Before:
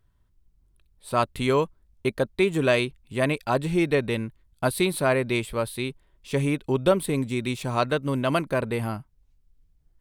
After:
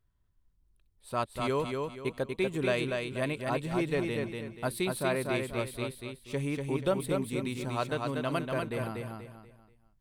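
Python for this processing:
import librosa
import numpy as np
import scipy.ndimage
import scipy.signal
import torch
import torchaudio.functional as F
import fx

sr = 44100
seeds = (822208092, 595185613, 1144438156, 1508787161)

y = fx.echo_feedback(x, sr, ms=241, feedback_pct=34, wet_db=-4)
y = y * librosa.db_to_amplitude(-8.5)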